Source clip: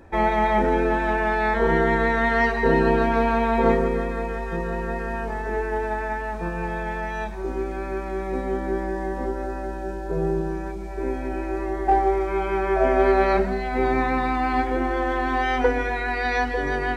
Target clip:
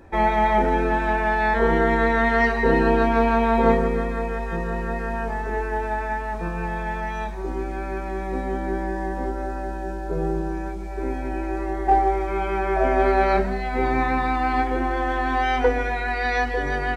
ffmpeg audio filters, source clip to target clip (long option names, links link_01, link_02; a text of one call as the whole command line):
ffmpeg -i in.wav -filter_complex "[0:a]asplit=2[link_01][link_02];[link_02]adelay=22,volume=-9.5dB[link_03];[link_01][link_03]amix=inputs=2:normalize=0" out.wav